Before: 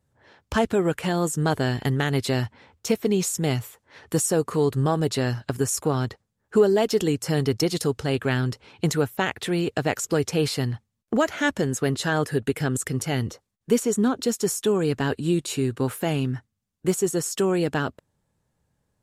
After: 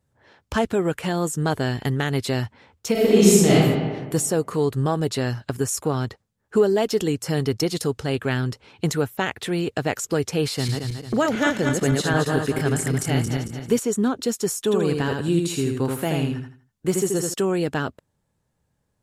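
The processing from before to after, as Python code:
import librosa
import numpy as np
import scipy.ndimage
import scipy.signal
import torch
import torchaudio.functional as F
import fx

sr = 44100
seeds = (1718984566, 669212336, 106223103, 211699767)

y = fx.reverb_throw(x, sr, start_s=2.92, length_s=0.61, rt60_s=1.5, drr_db=-9.5)
y = fx.reverse_delay_fb(y, sr, ms=112, feedback_pct=64, wet_db=-3.0, at=(10.46, 13.79))
y = fx.echo_feedback(y, sr, ms=81, feedback_pct=29, wet_db=-4.0, at=(14.6, 17.34))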